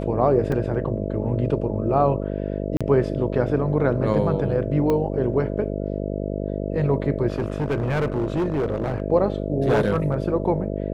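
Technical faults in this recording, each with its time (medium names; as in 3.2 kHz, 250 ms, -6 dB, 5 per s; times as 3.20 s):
buzz 50 Hz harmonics 13 -27 dBFS
0.52 s: dropout 2.9 ms
2.77–2.81 s: dropout 36 ms
4.90 s: pop -12 dBFS
7.28–9.02 s: clipped -19 dBFS
9.64–10.14 s: clipped -14 dBFS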